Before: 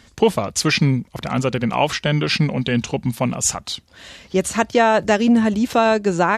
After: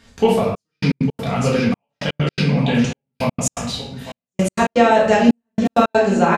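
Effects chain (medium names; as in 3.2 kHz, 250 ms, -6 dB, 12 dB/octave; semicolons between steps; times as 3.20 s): delay 855 ms -12.5 dB; simulated room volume 180 m³, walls mixed, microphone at 1.7 m; trance gate "xxxxxx...x.x." 164 bpm -60 dB; trim -5.5 dB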